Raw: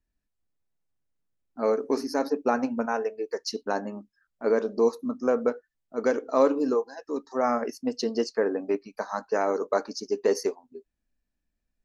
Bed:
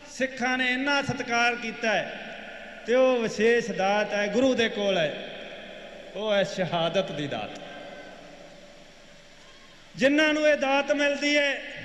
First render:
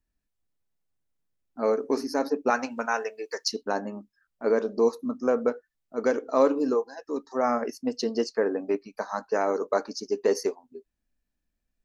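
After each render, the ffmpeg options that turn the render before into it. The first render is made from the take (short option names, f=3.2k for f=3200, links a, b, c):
-filter_complex "[0:a]asettb=1/sr,asplit=3[a][b][c];[a]atrim=end=2.504[d];[b]atrim=start=2.5:end=3.48,asetpts=PTS-STARTPTS,afade=t=in:d=0.004:c=qsin,afade=t=out:st=0.976:d=0.004:c=qsin,tiltshelf=f=740:g=-9[e];[c]atrim=start=3.476[f];[d][e]acrossfade=d=0.004:c1=hsin:c2=qsin[g];[g][f]acrossfade=d=0.004:c1=qsin:c2=hsin"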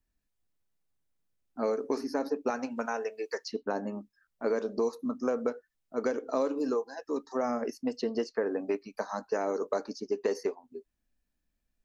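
-filter_complex "[0:a]acrossover=split=610|3100[a][b][c];[a]acompressor=threshold=-29dB:ratio=4[d];[b]acompressor=threshold=-36dB:ratio=4[e];[c]acompressor=threshold=-51dB:ratio=4[f];[d][e][f]amix=inputs=3:normalize=0"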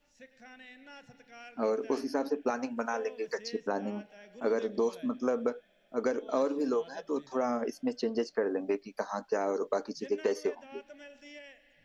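-filter_complex "[1:a]volume=-26.5dB[a];[0:a][a]amix=inputs=2:normalize=0"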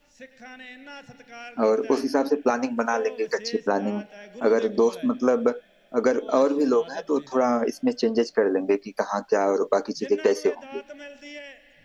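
-af "volume=9dB"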